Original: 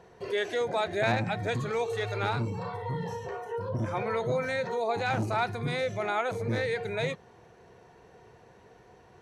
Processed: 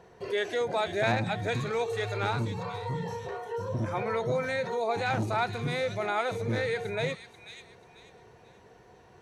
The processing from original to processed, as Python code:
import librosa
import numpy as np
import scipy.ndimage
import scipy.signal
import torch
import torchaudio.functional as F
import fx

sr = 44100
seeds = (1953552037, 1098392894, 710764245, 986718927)

y = fx.echo_wet_highpass(x, sr, ms=488, feedback_pct=31, hz=3100.0, wet_db=-5.5)